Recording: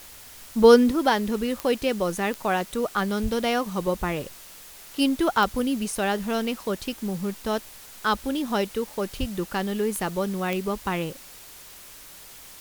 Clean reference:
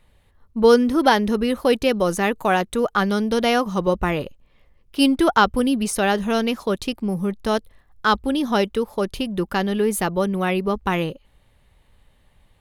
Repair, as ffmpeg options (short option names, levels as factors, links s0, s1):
-filter_complex "[0:a]adeclick=t=4,asplit=3[s0][s1][s2];[s0]afade=t=out:st=3.22:d=0.02[s3];[s1]highpass=f=140:w=0.5412,highpass=f=140:w=1.3066,afade=t=in:st=3.22:d=0.02,afade=t=out:st=3.34:d=0.02[s4];[s2]afade=t=in:st=3.34:d=0.02[s5];[s3][s4][s5]amix=inputs=3:normalize=0,asplit=3[s6][s7][s8];[s6]afade=t=out:st=9.19:d=0.02[s9];[s7]highpass=f=140:w=0.5412,highpass=f=140:w=1.3066,afade=t=in:st=9.19:d=0.02,afade=t=out:st=9.31:d=0.02[s10];[s8]afade=t=in:st=9.31:d=0.02[s11];[s9][s10][s11]amix=inputs=3:normalize=0,afwtdn=0.0056,asetnsamples=n=441:p=0,asendcmd='0.91 volume volume 5.5dB',volume=1"